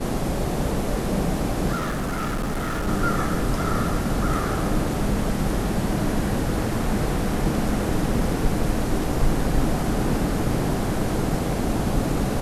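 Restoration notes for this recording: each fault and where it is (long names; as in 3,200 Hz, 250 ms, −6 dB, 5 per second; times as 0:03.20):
0:01.75–0:02.88: clipping −22.5 dBFS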